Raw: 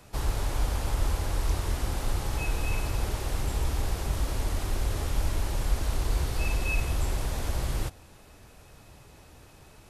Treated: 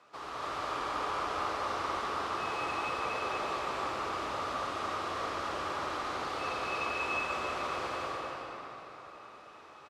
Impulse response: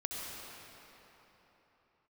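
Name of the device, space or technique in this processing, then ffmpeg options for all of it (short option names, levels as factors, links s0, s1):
station announcement: -filter_complex "[0:a]highpass=380,lowpass=4200,equalizer=f=1200:t=o:w=0.36:g=11.5,aecho=1:1:198.3|282.8:0.708|0.891[s0];[1:a]atrim=start_sample=2205[s1];[s0][s1]afir=irnorm=-1:irlink=0,volume=0.596"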